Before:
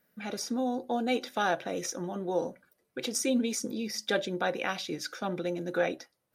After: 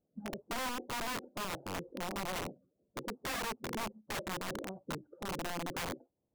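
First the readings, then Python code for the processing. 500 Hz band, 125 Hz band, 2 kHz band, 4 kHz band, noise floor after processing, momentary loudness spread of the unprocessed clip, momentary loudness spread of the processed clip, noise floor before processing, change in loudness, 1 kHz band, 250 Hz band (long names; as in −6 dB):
−11.5 dB, −3.5 dB, −5.5 dB, −5.5 dB, −83 dBFS, 7 LU, 7 LU, −78 dBFS, −8.0 dB, −5.5 dB, −11.0 dB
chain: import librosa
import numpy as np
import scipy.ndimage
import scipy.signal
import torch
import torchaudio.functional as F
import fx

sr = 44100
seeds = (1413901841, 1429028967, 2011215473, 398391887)

y = fx.spec_quant(x, sr, step_db=30)
y = fx.recorder_agc(y, sr, target_db=-25.0, rise_db_per_s=9.9, max_gain_db=30)
y = scipy.ndimage.gaussian_filter1d(y, 14.0, mode='constant')
y = (np.mod(10.0 ** (31.0 / 20.0) * y + 1.0, 2.0) - 1.0) / 10.0 ** (31.0 / 20.0)
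y = F.gain(torch.from_numpy(y), -1.0).numpy()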